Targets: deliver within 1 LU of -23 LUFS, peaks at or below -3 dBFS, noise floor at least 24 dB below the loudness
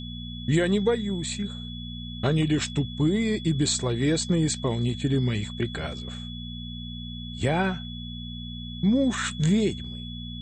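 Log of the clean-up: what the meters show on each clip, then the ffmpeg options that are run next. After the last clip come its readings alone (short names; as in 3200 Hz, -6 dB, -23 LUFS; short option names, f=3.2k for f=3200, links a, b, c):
hum 60 Hz; harmonics up to 240 Hz; hum level -35 dBFS; steady tone 3400 Hz; tone level -40 dBFS; loudness -27.0 LUFS; peak -10.5 dBFS; loudness target -23.0 LUFS
-> -af "bandreject=f=60:t=h:w=4,bandreject=f=120:t=h:w=4,bandreject=f=180:t=h:w=4,bandreject=f=240:t=h:w=4"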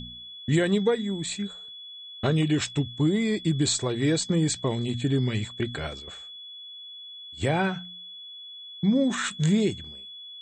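hum none; steady tone 3400 Hz; tone level -40 dBFS
-> -af "bandreject=f=3.4k:w=30"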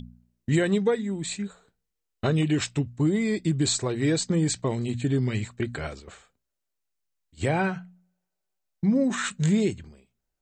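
steady tone none; loudness -26.0 LUFS; peak -11.5 dBFS; loudness target -23.0 LUFS
-> -af "volume=3dB"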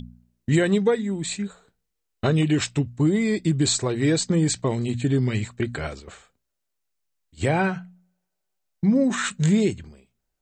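loudness -23.0 LUFS; peak -8.5 dBFS; noise floor -79 dBFS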